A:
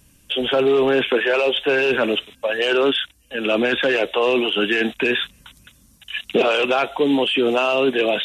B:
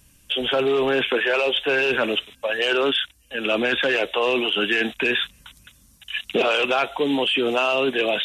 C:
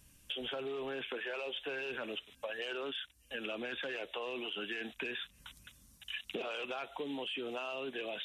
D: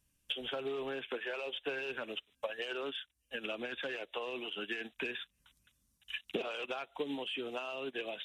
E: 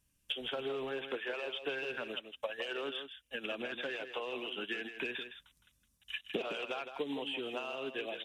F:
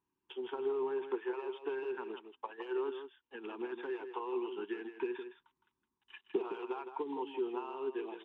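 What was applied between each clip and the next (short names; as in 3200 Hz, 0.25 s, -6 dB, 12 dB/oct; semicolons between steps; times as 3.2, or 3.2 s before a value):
bell 290 Hz -4.5 dB 2.8 oct
compressor 5:1, threshold -31 dBFS, peak gain reduction 13 dB; gain -7.5 dB
upward expander 2.5:1, over -49 dBFS; gain +5.5 dB
echo 0.162 s -9 dB
double band-pass 590 Hz, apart 1.3 oct; gain +9.5 dB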